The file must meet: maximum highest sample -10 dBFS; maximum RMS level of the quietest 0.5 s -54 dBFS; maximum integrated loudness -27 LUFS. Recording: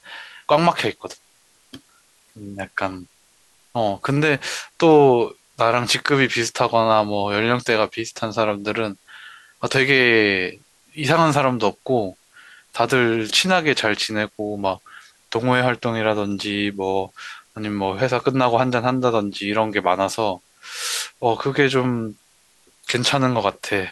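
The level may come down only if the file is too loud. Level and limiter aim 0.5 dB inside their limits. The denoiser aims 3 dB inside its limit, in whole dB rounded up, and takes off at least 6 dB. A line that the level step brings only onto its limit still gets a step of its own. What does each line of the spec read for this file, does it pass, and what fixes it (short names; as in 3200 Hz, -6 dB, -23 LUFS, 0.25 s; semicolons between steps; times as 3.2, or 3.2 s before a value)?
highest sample -3.5 dBFS: fail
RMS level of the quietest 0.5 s -58 dBFS: OK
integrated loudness -20.0 LUFS: fail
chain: gain -7.5 dB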